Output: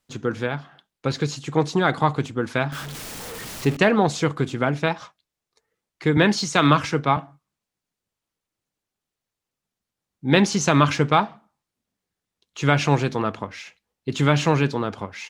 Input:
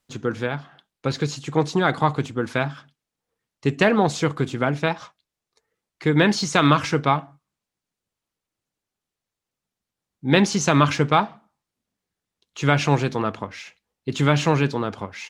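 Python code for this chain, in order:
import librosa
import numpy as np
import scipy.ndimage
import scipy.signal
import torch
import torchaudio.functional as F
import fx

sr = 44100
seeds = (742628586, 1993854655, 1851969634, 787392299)

y = fx.zero_step(x, sr, step_db=-28.5, at=(2.72, 3.77))
y = fx.band_widen(y, sr, depth_pct=40, at=(6.17, 7.17))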